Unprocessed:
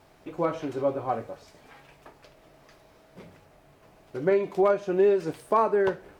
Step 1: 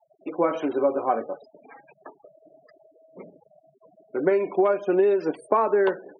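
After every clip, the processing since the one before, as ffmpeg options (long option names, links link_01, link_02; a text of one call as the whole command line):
ffmpeg -i in.wav -af "afftfilt=real='re*gte(hypot(re,im),0.00708)':imag='im*gte(hypot(re,im),0.00708)':win_size=1024:overlap=0.75,highpass=frequency=220:width=0.5412,highpass=frequency=220:width=1.3066,acompressor=threshold=-24dB:ratio=6,volume=7dB" out.wav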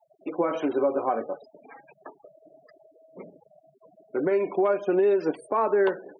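ffmpeg -i in.wav -af "alimiter=limit=-14.5dB:level=0:latency=1:release=94" out.wav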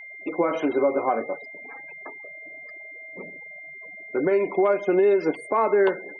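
ffmpeg -i in.wav -af "aeval=exprs='val(0)+0.00891*sin(2*PI*2100*n/s)':channel_layout=same,volume=2.5dB" out.wav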